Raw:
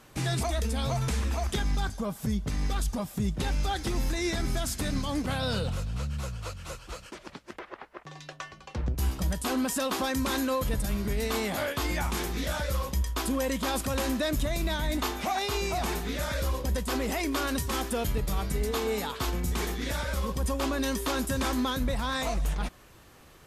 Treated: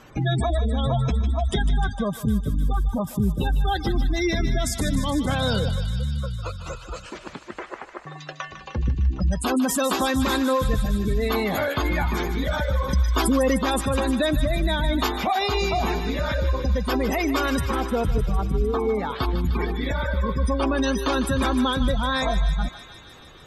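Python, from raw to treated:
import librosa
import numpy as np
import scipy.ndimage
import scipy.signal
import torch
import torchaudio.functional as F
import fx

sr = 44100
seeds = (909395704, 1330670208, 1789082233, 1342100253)

y = fx.spec_gate(x, sr, threshold_db=-20, keep='strong')
y = fx.lowpass(y, sr, hz=1900.0, slope=12, at=(17.61, 19.12))
y = fx.echo_thinned(y, sr, ms=152, feedback_pct=81, hz=1100.0, wet_db=-9.0)
y = fx.env_flatten(y, sr, amount_pct=50, at=(12.88, 13.57), fade=0.02)
y = y * librosa.db_to_amplitude(7.0)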